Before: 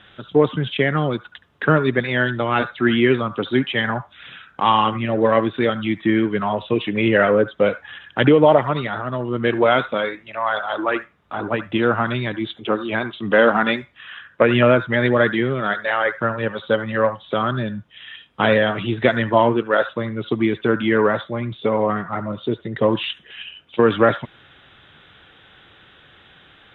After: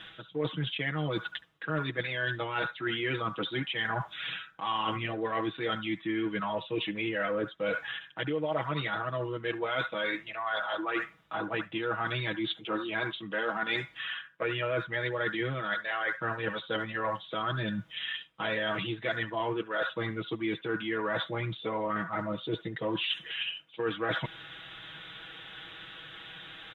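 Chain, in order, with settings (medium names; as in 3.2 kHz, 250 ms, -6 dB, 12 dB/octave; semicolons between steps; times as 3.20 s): tilt shelf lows -4 dB, about 1.4 kHz; comb 6.2 ms, depth 89%; reverse; compression 6:1, threshold -30 dBFS, peak gain reduction 20.5 dB; reverse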